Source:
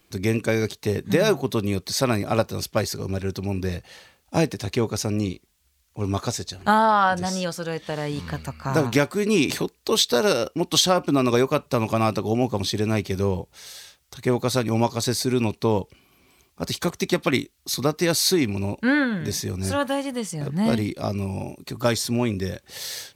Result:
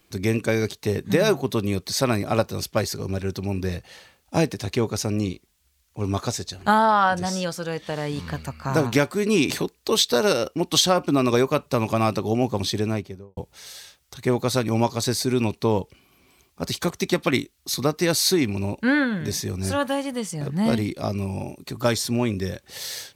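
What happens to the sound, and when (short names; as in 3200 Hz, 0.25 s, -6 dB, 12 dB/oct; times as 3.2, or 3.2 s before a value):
12.72–13.37 studio fade out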